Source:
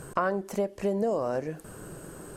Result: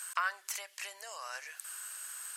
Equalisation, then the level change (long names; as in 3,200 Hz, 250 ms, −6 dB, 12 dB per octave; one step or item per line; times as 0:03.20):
Bessel high-pass filter 2,200 Hz, order 4
+8.5 dB